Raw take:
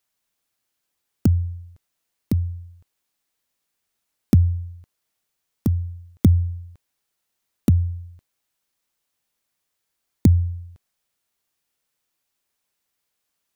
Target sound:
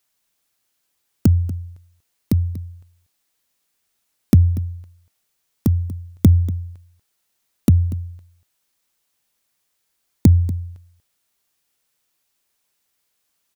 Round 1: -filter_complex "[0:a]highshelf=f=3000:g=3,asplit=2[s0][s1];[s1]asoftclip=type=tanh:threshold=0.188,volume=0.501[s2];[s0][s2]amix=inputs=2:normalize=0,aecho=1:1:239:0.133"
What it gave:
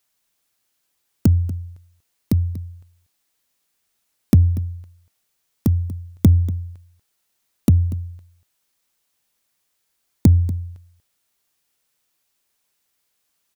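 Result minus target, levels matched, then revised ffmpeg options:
saturation: distortion +8 dB
-filter_complex "[0:a]highshelf=f=3000:g=3,asplit=2[s0][s1];[s1]asoftclip=type=tanh:threshold=0.376,volume=0.501[s2];[s0][s2]amix=inputs=2:normalize=0,aecho=1:1:239:0.133"

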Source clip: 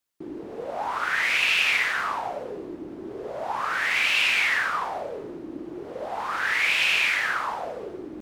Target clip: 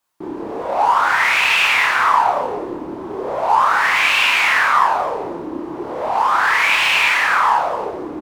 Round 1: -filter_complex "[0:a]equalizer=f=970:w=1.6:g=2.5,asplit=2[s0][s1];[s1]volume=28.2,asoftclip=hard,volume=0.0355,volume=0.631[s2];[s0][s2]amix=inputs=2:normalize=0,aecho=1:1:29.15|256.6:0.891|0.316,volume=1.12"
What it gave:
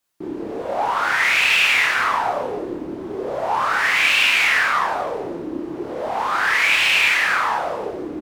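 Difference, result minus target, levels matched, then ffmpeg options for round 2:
1 kHz band -4.0 dB
-filter_complex "[0:a]equalizer=f=970:w=1.6:g=12.5,asplit=2[s0][s1];[s1]volume=28.2,asoftclip=hard,volume=0.0355,volume=0.631[s2];[s0][s2]amix=inputs=2:normalize=0,aecho=1:1:29.15|256.6:0.891|0.316,volume=1.12"

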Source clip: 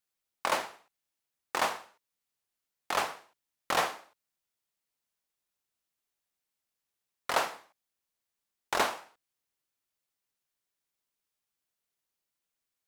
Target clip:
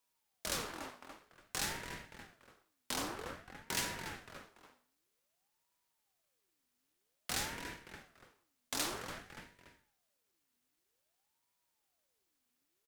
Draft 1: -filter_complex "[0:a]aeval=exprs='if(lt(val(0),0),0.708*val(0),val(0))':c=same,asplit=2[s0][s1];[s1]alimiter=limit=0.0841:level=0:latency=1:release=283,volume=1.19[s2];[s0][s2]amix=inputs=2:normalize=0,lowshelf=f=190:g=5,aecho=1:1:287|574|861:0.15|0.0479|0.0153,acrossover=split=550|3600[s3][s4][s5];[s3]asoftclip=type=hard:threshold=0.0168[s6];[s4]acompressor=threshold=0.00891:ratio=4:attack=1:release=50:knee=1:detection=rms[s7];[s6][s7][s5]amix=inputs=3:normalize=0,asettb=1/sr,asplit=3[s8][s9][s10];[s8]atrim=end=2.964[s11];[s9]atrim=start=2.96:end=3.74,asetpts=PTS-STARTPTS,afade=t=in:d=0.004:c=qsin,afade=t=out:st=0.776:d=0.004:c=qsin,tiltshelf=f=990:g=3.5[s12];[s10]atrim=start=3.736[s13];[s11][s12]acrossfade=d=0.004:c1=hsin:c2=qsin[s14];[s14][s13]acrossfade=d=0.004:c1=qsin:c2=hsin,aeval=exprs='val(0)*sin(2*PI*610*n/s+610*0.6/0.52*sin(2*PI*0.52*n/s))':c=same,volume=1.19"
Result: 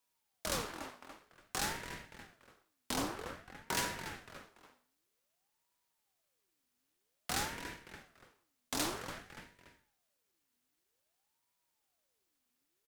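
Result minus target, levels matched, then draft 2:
hard clipper: distortion -4 dB
-filter_complex "[0:a]aeval=exprs='if(lt(val(0),0),0.708*val(0),val(0))':c=same,asplit=2[s0][s1];[s1]alimiter=limit=0.0841:level=0:latency=1:release=283,volume=1.19[s2];[s0][s2]amix=inputs=2:normalize=0,lowshelf=f=190:g=5,aecho=1:1:287|574|861:0.15|0.0479|0.0153,acrossover=split=550|3600[s3][s4][s5];[s3]asoftclip=type=hard:threshold=0.00668[s6];[s4]acompressor=threshold=0.00891:ratio=4:attack=1:release=50:knee=1:detection=rms[s7];[s6][s7][s5]amix=inputs=3:normalize=0,asettb=1/sr,asplit=3[s8][s9][s10];[s8]atrim=end=2.964[s11];[s9]atrim=start=2.96:end=3.74,asetpts=PTS-STARTPTS,afade=t=in:d=0.004:c=qsin,afade=t=out:st=0.776:d=0.004:c=qsin,tiltshelf=f=990:g=3.5[s12];[s10]atrim=start=3.736[s13];[s11][s12]acrossfade=d=0.004:c1=hsin:c2=qsin[s14];[s14][s13]acrossfade=d=0.004:c1=qsin:c2=hsin,aeval=exprs='val(0)*sin(2*PI*610*n/s+610*0.6/0.52*sin(2*PI*0.52*n/s))':c=same,volume=1.19"

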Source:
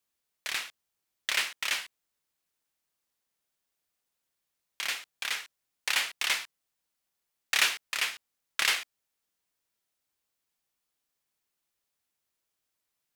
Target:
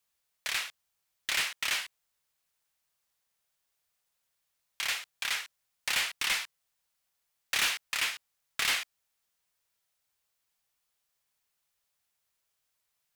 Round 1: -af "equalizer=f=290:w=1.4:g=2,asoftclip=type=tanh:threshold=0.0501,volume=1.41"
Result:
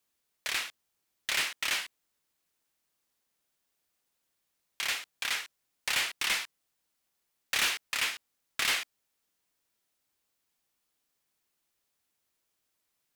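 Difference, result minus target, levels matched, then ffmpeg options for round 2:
250 Hz band +2.5 dB
-af "equalizer=f=290:w=1.4:g=-10,asoftclip=type=tanh:threshold=0.0501,volume=1.41"

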